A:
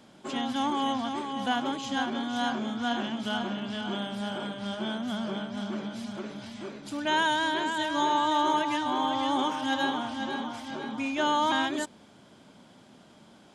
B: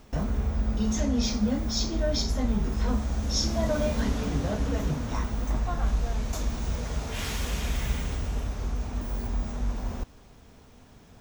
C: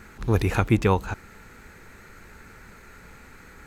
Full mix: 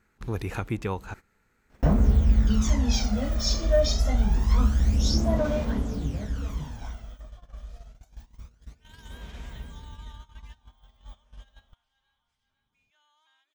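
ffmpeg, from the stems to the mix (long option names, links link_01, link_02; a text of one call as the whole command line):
ffmpeg -i stem1.wav -i stem2.wav -i stem3.wav -filter_complex "[0:a]highpass=1500,adelay=1750,volume=-19.5dB[link_01];[1:a]aphaser=in_gain=1:out_gain=1:delay=1.7:decay=0.64:speed=0.26:type=sinusoidal,adelay=1700,volume=-0.5dB,afade=type=out:start_time=4.89:duration=0.63:silence=0.375837,afade=type=out:start_time=6.65:duration=0.54:silence=0.281838[link_02];[2:a]acompressor=threshold=-30dB:ratio=1.5,volume=-4.5dB[link_03];[link_01][link_02][link_03]amix=inputs=3:normalize=0,agate=range=-17dB:threshold=-41dB:ratio=16:detection=peak" out.wav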